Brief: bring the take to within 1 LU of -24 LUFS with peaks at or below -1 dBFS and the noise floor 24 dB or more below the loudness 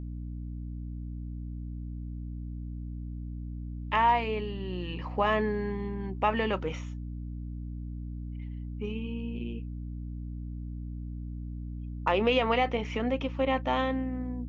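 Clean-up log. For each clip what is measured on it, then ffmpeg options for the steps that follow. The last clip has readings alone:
hum 60 Hz; harmonics up to 300 Hz; hum level -35 dBFS; loudness -32.5 LUFS; peak -12.0 dBFS; loudness target -24.0 LUFS
-> -af "bandreject=f=60:t=h:w=4,bandreject=f=120:t=h:w=4,bandreject=f=180:t=h:w=4,bandreject=f=240:t=h:w=4,bandreject=f=300:t=h:w=4"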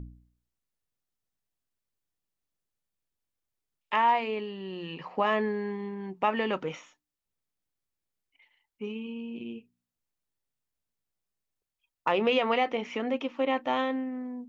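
hum none; loudness -30.0 LUFS; peak -13.0 dBFS; loudness target -24.0 LUFS
-> -af "volume=6dB"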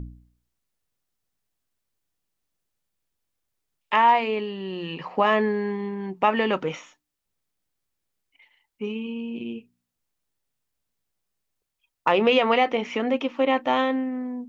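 loudness -24.0 LUFS; peak -7.0 dBFS; noise floor -82 dBFS

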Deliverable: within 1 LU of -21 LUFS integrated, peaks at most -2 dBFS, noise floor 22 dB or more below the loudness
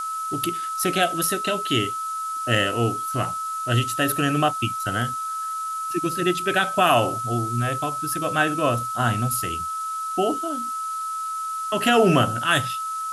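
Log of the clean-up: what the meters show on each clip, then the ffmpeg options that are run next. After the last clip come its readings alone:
steady tone 1300 Hz; tone level -26 dBFS; noise floor -29 dBFS; noise floor target -45 dBFS; loudness -23.0 LUFS; peak -6.0 dBFS; loudness target -21.0 LUFS
-> -af "bandreject=f=1.3k:w=30"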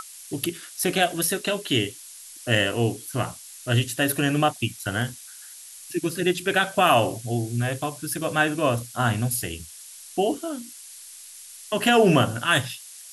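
steady tone none; noise floor -44 dBFS; noise floor target -46 dBFS
-> -af "afftdn=nr=6:nf=-44"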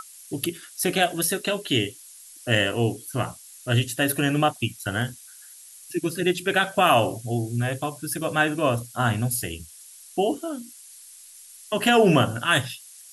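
noise floor -47 dBFS; loudness -24.0 LUFS; peak -6.0 dBFS; loudness target -21.0 LUFS
-> -af "volume=3dB"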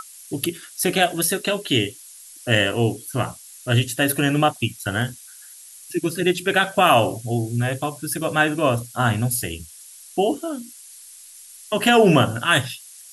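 loudness -21.0 LUFS; peak -3.0 dBFS; noise floor -44 dBFS

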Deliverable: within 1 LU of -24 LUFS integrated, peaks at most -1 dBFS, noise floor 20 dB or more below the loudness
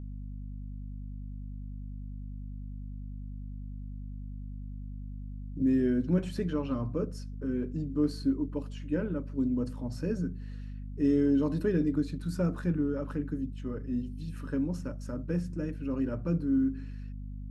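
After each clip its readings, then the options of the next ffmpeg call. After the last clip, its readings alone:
hum 50 Hz; harmonics up to 250 Hz; hum level -37 dBFS; loudness -31.5 LUFS; peak -15.0 dBFS; loudness target -24.0 LUFS
-> -af "bandreject=f=50:t=h:w=6,bandreject=f=100:t=h:w=6,bandreject=f=150:t=h:w=6,bandreject=f=200:t=h:w=6,bandreject=f=250:t=h:w=6"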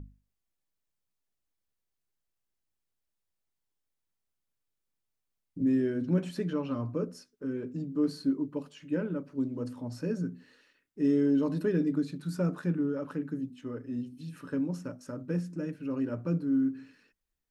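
hum none; loudness -32.0 LUFS; peak -16.0 dBFS; loudness target -24.0 LUFS
-> -af "volume=8dB"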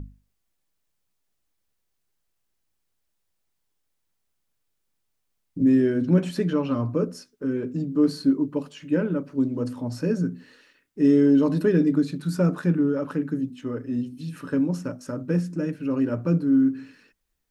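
loudness -24.0 LUFS; peak -8.0 dBFS; noise floor -76 dBFS

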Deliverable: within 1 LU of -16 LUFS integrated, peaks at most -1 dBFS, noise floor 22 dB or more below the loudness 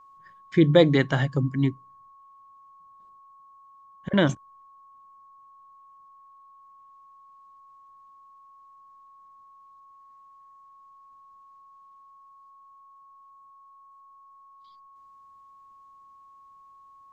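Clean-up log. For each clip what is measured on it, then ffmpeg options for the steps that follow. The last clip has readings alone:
steady tone 1100 Hz; tone level -50 dBFS; loudness -22.5 LUFS; peak -4.0 dBFS; loudness target -16.0 LUFS
-> -af "bandreject=f=1.1k:w=30"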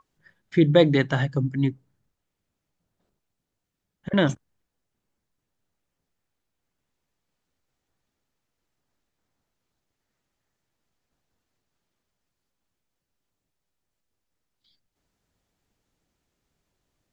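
steady tone none; loudness -22.5 LUFS; peak -4.0 dBFS; loudness target -16.0 LUFS
-> -af "volume=6.5dB,alimiter=limit=-1dB:level=0:latency=1"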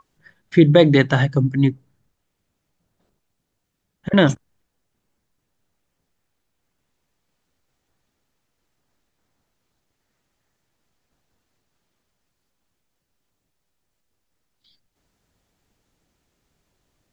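loudness -16.5 LUFS; peak -1.0 dBFS; noise floor -76 dBFS

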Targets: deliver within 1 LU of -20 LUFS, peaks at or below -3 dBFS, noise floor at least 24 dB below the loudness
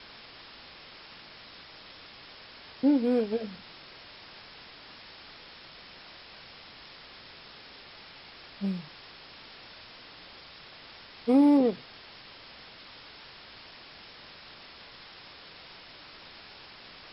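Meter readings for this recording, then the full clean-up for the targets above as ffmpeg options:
noise floor -50 dBFS; noise floor target -51 dBFS; loudness -26.5 LUFS; peak -13.0 dBFS; loudness target -20.0 LUFS
-> -af "afftdn=nr=6:nf=-50"
-af "volume=6.5dB"

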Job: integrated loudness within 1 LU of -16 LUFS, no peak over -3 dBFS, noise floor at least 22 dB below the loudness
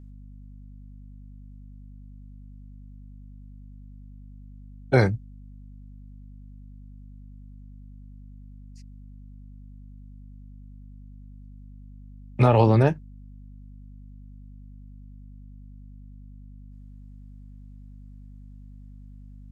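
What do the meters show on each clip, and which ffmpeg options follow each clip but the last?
hum 50 Hz; harmonics up to 250 Hz; hum level -42 dBFS; loudness -21.5 LUFS; peak -6.5 dBFS; loudness target -16.0 LUFS
-> -af "bandreject=f=50:t=h:w=4,bandreject=f=100:t=h:w=4,bandreject=f=150:t=h:w=4,bandreject=f=200:t=h:w=4,bandreject=f=250:t=h:w=4"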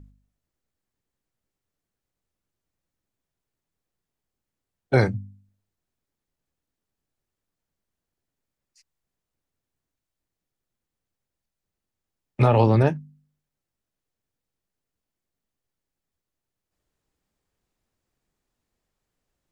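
hum none; loudness -21.0 LUFS; peak -7.0 dBFS; loudness target -16.0 LUFS
-> -af "volume=5dB,alimiter=limit=-3dB:level=0:latency=1"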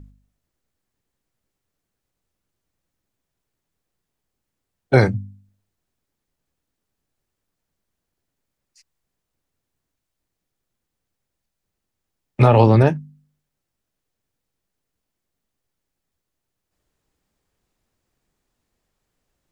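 loudness -16.0 LUFS; peak -3.0 dBFS; noise floor -81 dBFS

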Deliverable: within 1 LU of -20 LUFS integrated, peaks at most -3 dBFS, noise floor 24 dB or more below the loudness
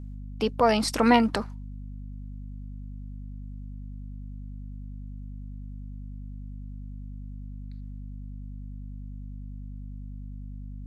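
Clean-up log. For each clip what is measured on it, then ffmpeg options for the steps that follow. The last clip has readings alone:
hum 50 Hz; harmonics up to 250 Hz; hum level -36 dBFS; loudness -32.0 LUFS; peak -7.0 dBFS; loudness target -20.0 LUFS
-> -af "bandreject=f=50:t=h:w=4,bandreject=f=100:t=h:w=4,bandreject=f=150:t=h:w=4,bandreject=f=200:t=h:w=4,bandreject=f=250:t=h:w=4"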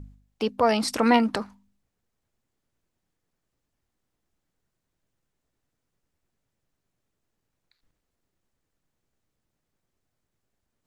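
hum none; loudness -23.5 LUFS; peak -8.0 dBFS; loudness target -20.0 LUFS
-> -af "volume=3.5dB"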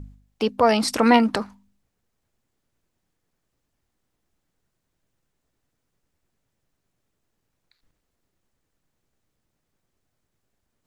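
loudness -20.0 LUFS; peak -4.5 dBFS; noise floor -78 dBFS

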